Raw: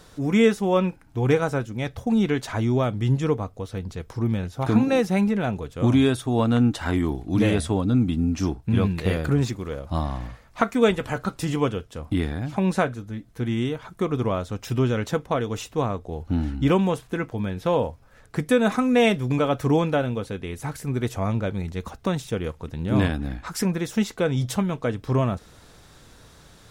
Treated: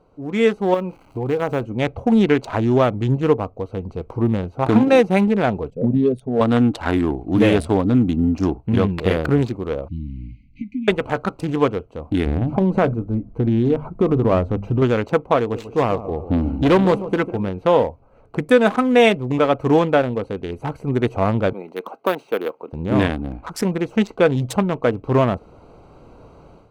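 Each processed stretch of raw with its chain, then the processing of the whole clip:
0.74–1.63 switching spikes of -25.5 dBFS + high shelf 6300 Hz -9 dB + compressor 2.5:1, threshold -26 dBFS
5.7–6.41 formant sharpening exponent 2 + fixed phaser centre 320 Hz, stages 6
9.88–10.88 compressor 1.5:1, threshold -37 dBFS + brick-wall FIR band-stop 310–2000 Hz + air absorption 140 m
12.26–14.82 tilt -2.5 dB/oct + notches 50/100/150/200/250 Hz + compressor 5:1, threshold -19 dBFS
15.38–17.49 hard clip -18 dBFS + warbling echo 0.145 s, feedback 37%, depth 84 cents, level -12 dB
21.53–22.73 Bessel high-pass 380 Hz, order 4 + dynamic EQ 1600 Hz, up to +5 dB, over -53 dBFS, Q 6.2 + careless resampling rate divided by 3×, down filtered, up hold
whole clip: Wiener smoothing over 25 samples; tone controls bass -8 dB, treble -5 dB; AGC gain up to 13 dB; gain -1 dB

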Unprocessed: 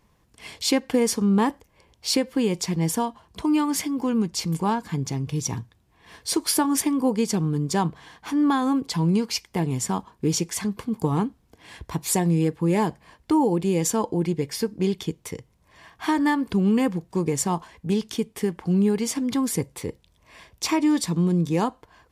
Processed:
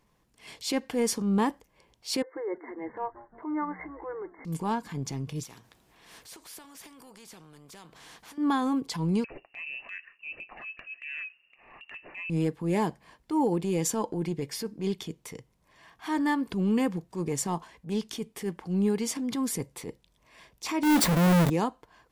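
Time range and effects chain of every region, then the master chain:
2.22–4.45 brick-wall FIR band-pass 300–2200 Hz + frequency-shifting echo 0.174 s, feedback 57%, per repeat -120 Hz, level -20 dB
5.43–8.38 compressor, threshold -37 dBFS + spectral compressor 2:1
9.24–12.3 inverted band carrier 2800 Hz + compressor 2.5:1, threshold -34 dBFS
20.83–21.5 half-waves squared off + bell 5400 Hz -6.5 dB 2.1 oct + fast leveller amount 70%
whole clip: transient shaper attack -8 dB, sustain 0 dB; bell 81 Hz -12 dB 0.57 oct; gain -4 dB

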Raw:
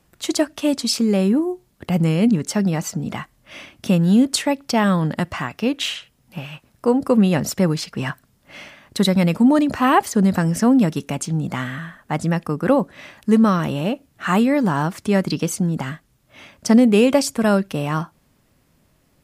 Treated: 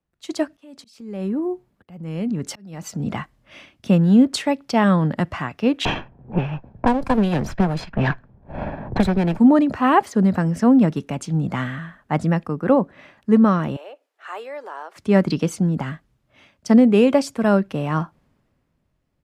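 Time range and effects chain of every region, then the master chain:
0.53–3 high shelf 11000 Hz +7.5 dB + compressor 16:1, threshold -21 dBFS + auto swell 0.443 s
5.85–9.39 minimum comb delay 1.2 ms + low-pass opened by the level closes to 540 Hz, open at -18 dBFS + three-band squash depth 100%
13.76–14.96 steep high-pass 420 Hz + compressor 1.5:1, threshold -43 dBFS
whole clip: LPF 2200 Hz 6 dB/oct; AGC gain up to 8 dB; three-band expander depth 40%; gain -4.5 dB

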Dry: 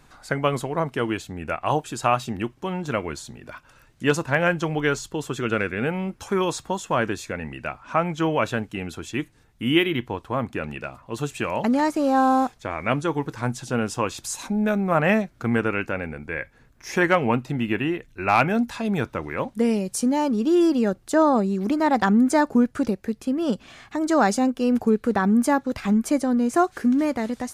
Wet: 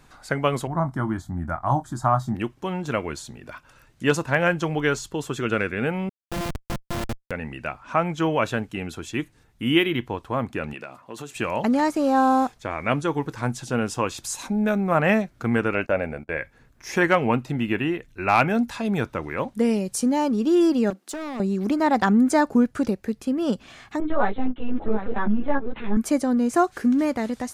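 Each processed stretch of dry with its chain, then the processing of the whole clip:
0.67–2.35 tilt shelf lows +6.5 dB, about 1200 Hz + fixed phaser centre 1100 Hz, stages 4 + doubler 23 ms -10 dB
6.09–7.31 sample sorter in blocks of 128 samples + notches 50/100/150/200/250/300/350 Hz + Schmitt trigger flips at -22 dBFS
10.73–11.36 HPF 190 Hz + compressor, threshold -31 dBFS
15.74–16.37 bell 620 Hz +12 dB 0.45 oct + gate -37 dBFS, range -24 dB
20.9–21.4 Chebyshev high-pass 190 Hz, order 5 + compressor 2:1, threshold -28 dBFS + overloaded stage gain 28.5 dB
24–25.97 echo 0.739 s -10.5 dB + LPC vocoder at 8 kHz pitch kept + ensemble effect
whole clip: dry

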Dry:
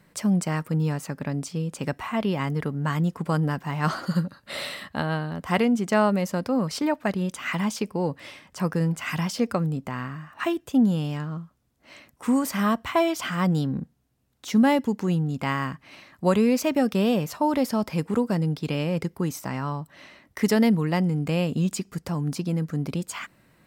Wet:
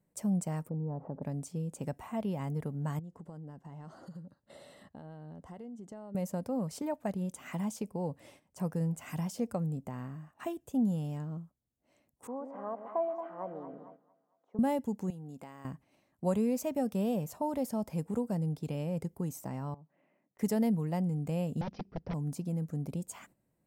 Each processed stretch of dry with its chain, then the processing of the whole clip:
0.69–1.23 LPF 1000 Hz 24 dB/oct + low shelf 330 Hz -6 dB + fast leveller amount 50%
2.99–6.15 compressor 5:1, threshold -37 dBFS + air absorption 54 m + notch 2400 Hz, Q 5.6
12.27–14.59 Butterworth band-pass 720 Hz, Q 0.93 + split-band echo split 700 Hz, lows 0.124 s, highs 0.226 s, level -8 dB
15.1–15.65 HPF 390 Hz 6 dB/oct + compressor 3:1, threshold -35 dBFS
19.74–20.39 elliptic band-pass 150–2500 Hz + compressor 12:1, threshold -44 dBFS
21.61–22.14 wrapped overs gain 22.5 dB + steep low-pass 5700 Hz 96 dB/oct + tone controls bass +2 dB, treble -9 dB
whole clip: dynamic EQ 340 Hz, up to -6 dB, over -35 dBFS, Q 1.7; gate -44 dBFS, range -10 dB; band shelf 2400 Hz -11.5 dB 2.6 oct; gain -7 dB

